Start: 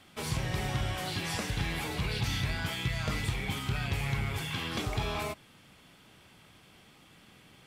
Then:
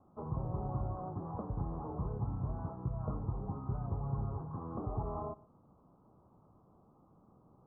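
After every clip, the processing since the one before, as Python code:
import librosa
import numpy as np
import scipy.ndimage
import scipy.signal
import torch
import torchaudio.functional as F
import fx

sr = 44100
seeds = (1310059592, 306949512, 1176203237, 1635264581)

y = scipy.signal.sosfilt(scipy.signal.butter(12, 1200.0, 'lowpass', fs=sr, output='sos'), x)
y = y + 10.0 ** (-22.0 / 20.0) * np.pad(y, (int(123 * sr / 1000.0), 0))[:len(y)]
y = y * librosa.db_to_amplitude(-4.0)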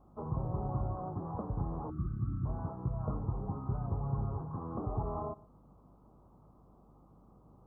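y = fx.spec_box(x, sr, start_s=1.9, length_s=0.55, low_hz=380.0, high_hz=1100.0, gain_db=-29)
y = fx.add_hum(y, sr, base_hz=50, snr_db=27)
y = y * librosa.db_to_amplitude(2.0)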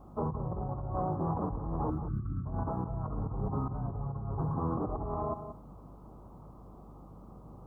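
y = fx.over_compress(x, sr, threshold_db=-40.0, ratio=-1.0)
y = y + 10.0 ** (-11.0 / 20.0) * np.pad(y, (int(182 * sr / 1000.0), 0))[:len(y)]
y = y * librosa.db_to_amplitude(5.5)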